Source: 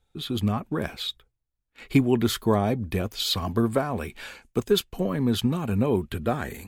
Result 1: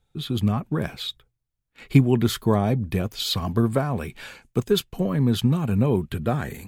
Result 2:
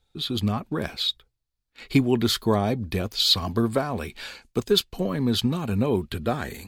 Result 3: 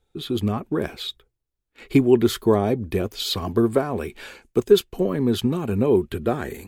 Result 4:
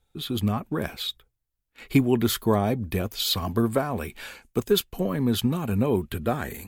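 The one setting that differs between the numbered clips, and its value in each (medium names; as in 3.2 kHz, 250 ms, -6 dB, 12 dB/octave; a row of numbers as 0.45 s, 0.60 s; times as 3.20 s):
peaking EQ, frequency: 140 Hz, 4.4 kHz, 380 Hz, 15 kHz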